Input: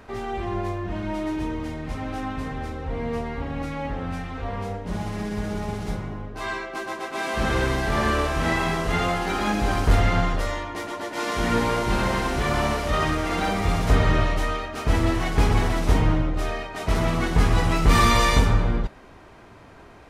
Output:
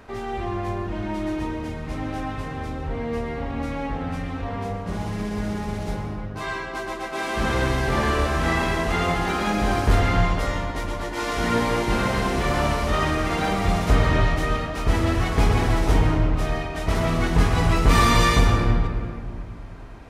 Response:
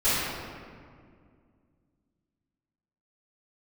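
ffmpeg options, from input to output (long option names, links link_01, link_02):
-filter_complex "[0:a]asplit=2[link_01][link_02];[1:a]atrim=start_sample=2205,adelay=105[link_03];[link_02][link_03]afir=irnorm=-1:irlink=0,volume=-22dB[link_04];[link_01][link_04]amix=inputs=2:normalize=0"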